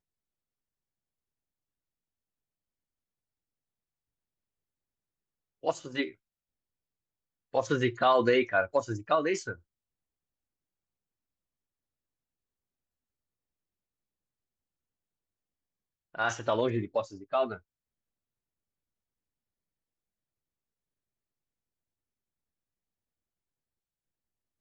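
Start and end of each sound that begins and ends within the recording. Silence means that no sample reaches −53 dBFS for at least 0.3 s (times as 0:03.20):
0:05.63–0:06.14
0:07.53–0:09.59
0:16.14–0:17.59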